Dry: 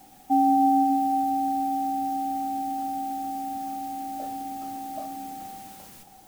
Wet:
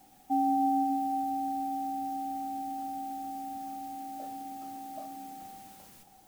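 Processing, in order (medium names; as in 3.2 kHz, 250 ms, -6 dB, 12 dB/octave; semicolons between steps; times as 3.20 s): 3.95–5.42 s: high-pass 89 Hz; trim -7 dB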